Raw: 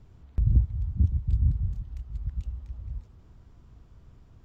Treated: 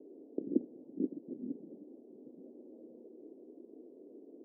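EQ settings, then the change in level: steep high-pass 280 Hz 48 dB/oct; steep low-pass 500 Hz 36 dB/oct; +17.0 dB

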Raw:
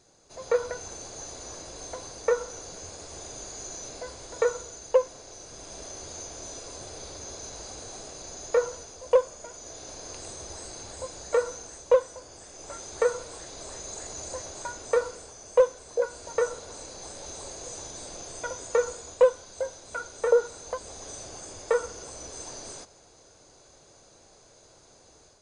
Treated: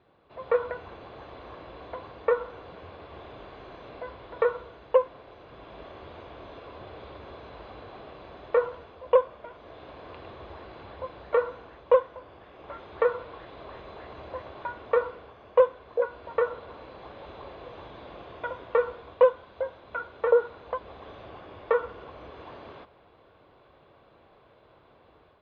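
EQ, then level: HPF 44 Hz; steep low-pass 3400 Hz 48 dB/oct; bell 1100 Hz +7 dB 0.29 oct; 0.0 dB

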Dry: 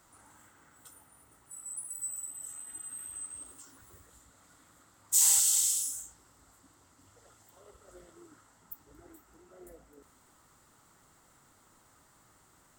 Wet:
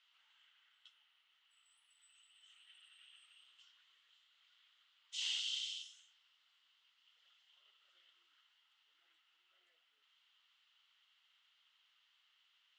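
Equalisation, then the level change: resonant high-pass 3000 Hz, resonance Q 6.4; LPF 7600 Hz 24 dB/oct; air absorption 280 m; -2.5 dB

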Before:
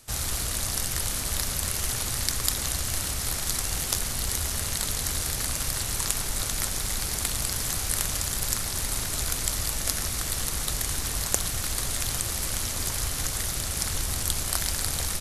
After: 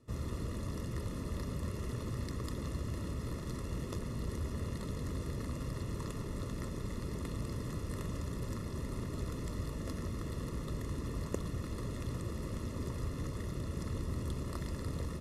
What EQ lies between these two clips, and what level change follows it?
running mean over 57 samples; HPF 200 Hz 6 dB/oct; +5.0 dB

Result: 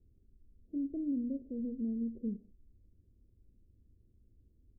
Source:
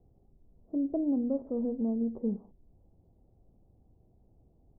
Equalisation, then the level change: Gaussian blur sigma 25 samples; bell 150 Hz -11 dB 0.53 oct; 0.0 dB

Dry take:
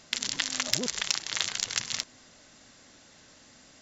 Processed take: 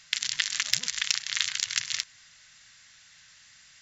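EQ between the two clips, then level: EQ curve 150 Hz 0 dB, 340 Hz -23 dB, 1800 Hz +11 dB, 9200 Hz +7 dB; -7.0 dB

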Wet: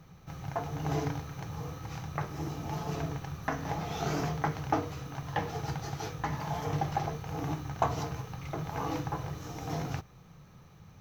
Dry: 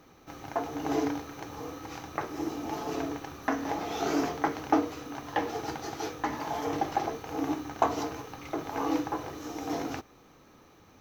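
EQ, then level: resonant low shelf 210 Hz +9 dB, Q 3; -2.5 dB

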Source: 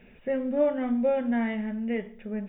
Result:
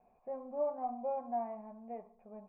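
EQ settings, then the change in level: vocal tract filter a; air absorption 170 m; +6.0 dB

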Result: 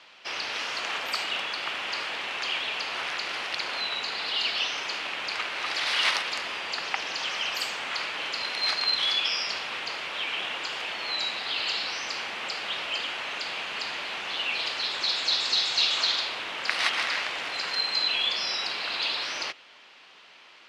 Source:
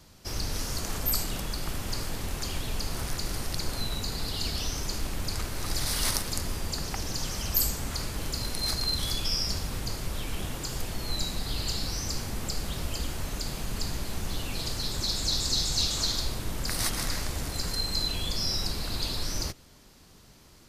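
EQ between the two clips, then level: HPF 730 Hz 12 dB/oct; synth low-pass 2800 Hz, resonance Q 2.4; +7.0 dB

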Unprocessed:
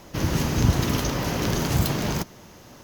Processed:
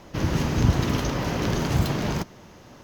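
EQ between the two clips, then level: high shelf 7000 Hz -12 dB; 0.0 dB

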